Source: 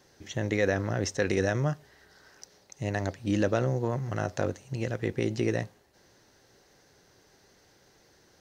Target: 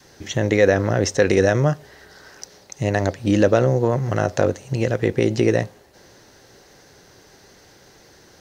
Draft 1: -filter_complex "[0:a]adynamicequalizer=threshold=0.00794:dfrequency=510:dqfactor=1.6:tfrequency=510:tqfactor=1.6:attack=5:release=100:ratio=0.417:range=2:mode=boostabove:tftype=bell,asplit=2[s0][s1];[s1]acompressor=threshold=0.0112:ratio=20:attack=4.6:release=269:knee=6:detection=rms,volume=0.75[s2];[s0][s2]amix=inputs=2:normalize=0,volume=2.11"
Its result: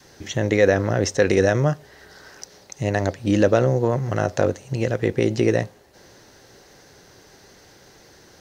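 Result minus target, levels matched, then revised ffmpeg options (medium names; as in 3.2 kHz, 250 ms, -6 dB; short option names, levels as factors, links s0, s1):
compression: peak gain reduction +10.5 dB
-filter_complex "[0:a]adynamicequalizer=threshold=0.00794:dfrequency=510:dqfactor=1.6:tfrequency=510:tqfactor=1.6:attack=5:release=100:ratio=0.417:range=2:mode=boostabove:tftype=bell,asplit=2[s0][s1];[s1]acompressor=threshold=0.0398:ratio=20:attack=4.6:release=269:knee=6:detection=rms,volume=0.75[s2];[s0][s2]amix=inputs=2:normalize=0,volume=2.11"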